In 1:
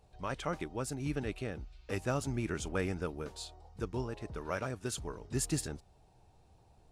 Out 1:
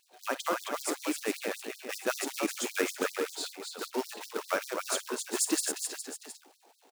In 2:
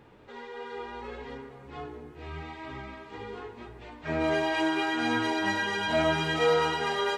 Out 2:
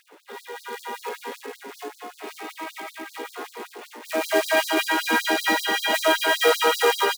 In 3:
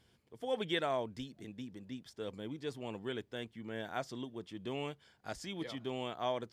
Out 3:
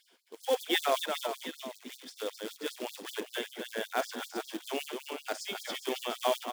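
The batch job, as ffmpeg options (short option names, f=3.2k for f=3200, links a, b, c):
-af "aecho=1:1:49|265|412|716:0.2|0.562|0.335|0.188,acrusher=bits=3:mode=log:mix=0:aa=0.000001,afftfilt=real='re*gte(b*sr/1024,210*pow(4000/210,0.5+0.5*sin(2*PI*5.2*pts/sr)))':imag='im*gte(b*sr/1024,210*pow(4000/210,0.5+0.5*sin(2*PI*5.2*pts/sr)))':win_size=1024:overlap=0.75,volume=7dB"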